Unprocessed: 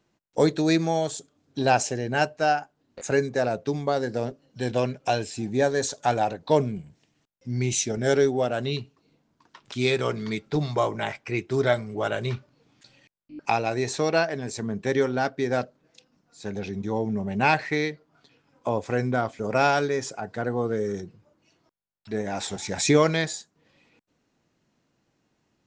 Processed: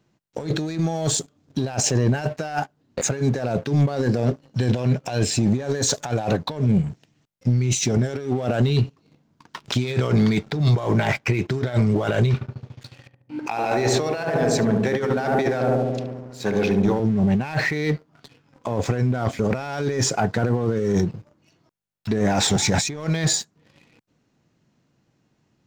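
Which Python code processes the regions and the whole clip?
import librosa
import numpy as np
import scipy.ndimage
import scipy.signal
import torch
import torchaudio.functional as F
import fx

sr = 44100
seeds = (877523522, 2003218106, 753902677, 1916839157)

y = fx.chain(x, sr, fx.highpass(hz=520.0, slope=6),
    fx.high_shelf(hz=4600.0, db=-7.0),
    fx.echo_filtered(ms=72, feedback_pct=81, hz=930.0, wet_db=-3), at=(12.34, 17.0))
y = fx.over_compress(y, sr, threshold_db=-32.0, ratio=-1.0)
y = fx.peak_eq(y, sr, hz=130.0, db=7.5, octaves=1.6)
y = fx.leveller(y, sr, passes=2)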